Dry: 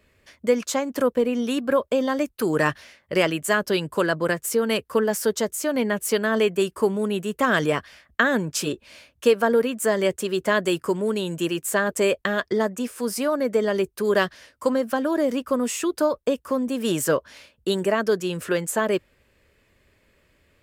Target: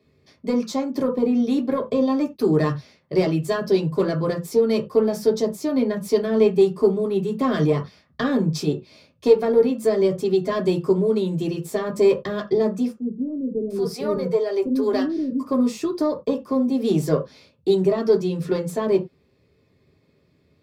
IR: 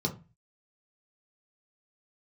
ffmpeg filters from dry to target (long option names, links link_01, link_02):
-filter_complex "[0:a]aeval=exprs='(tanh(3.16*val(0)+0.55)-tanh(0.55))/3.16':channel_layout=same,asettb=1/sr,asplit=3[link_01][link_02][link_03];[link_01]atrim=end=12.924[link_04];[link_02]atrim=start=12.92:end=15.43,asetpts=PTS-STARTPTS,afade=type=in:duration=0.004:curve=qsin,afade=type=out:start_time=2.506:duration=0.004:curve=qsin,acrossover=split=370[link_05][link_06];[link_06]adelay=780[link_07];[link_05][link_07]amix=inputs=2:normalize=0,atrim=end_sample=110691[link_08];[link_03]atrim=start=15.426[link_09];[link_04][link_08]acrossfade=duration=0.004:curve1=hsin:curve2=qsin[link_10];[link_10][link_09]acrossfade=duration=0.004:curve1=qsin:curve2=hsin[link_11];[1:a]atrim=start_sample=2205,afade=type=out:start_time=0.15:duration=0.01,atrim=end_sample=7056[link_12];[link_11][link_12]afir=irnorm=-1:irlink=0,volume=-7dB"